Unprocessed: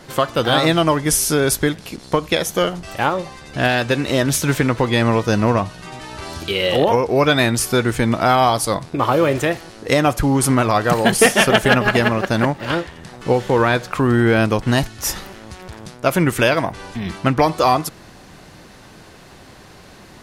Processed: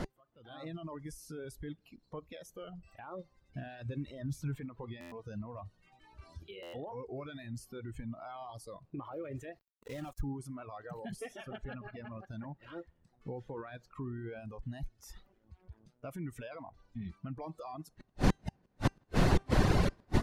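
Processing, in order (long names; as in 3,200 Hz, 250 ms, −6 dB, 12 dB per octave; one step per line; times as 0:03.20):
brickwall limiter −14.5 dBFS, peak gain reduction 11 dB
gate with flip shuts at −32 dBFS, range −35 dB
hum removal 392.6 Hz, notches 28
tape delay 159 ms, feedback 72%, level −20 dB, low-pass 2,800 Hz
automatic gain control gain up to 12 dB
0:09.59–0:10.21: bit-depth reduction 8 bits, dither none
reverb reduction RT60 1.9 s
spectral tilt −2.5 dB per octave
noise reduction from a noise print of the clip's start 9 dB
0:03.66–0:04.56: low-shelf EQ 140 Hz +11 dB
0:11.58–0:12.12: low-pass filter 5,500 Hz 24 dB per octave
buffer that repeats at 0:05.00/0:06.62, samples 512, times 9
level +2.5 dB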